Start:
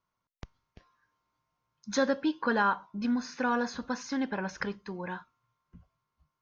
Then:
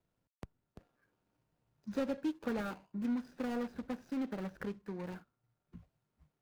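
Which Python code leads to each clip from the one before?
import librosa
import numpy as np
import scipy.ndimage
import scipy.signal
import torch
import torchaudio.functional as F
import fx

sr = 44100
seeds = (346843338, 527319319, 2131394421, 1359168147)

y = scipy.signal.medfilt(x, 41)
y = fx.band_squash(y, sr, depth_pct=40)
y = F.gain(torch.from_numpy(y), -4.5).numpy()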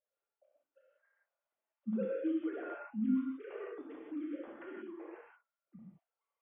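y = fx.sine_speech(x, sr)
y = fx.rev_gated(y, sr, seeds[0], gate_ms=210, shape='flat', drr_db=-5.0)
y = F.gain(torch.from_numpy(y), -6.0).numpy()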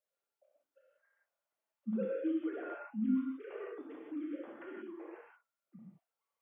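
y = scipy.signal.sosfilt(scipy.signal.butter(2, 90.0, 'highpass', fs=sr, output='sos'), x)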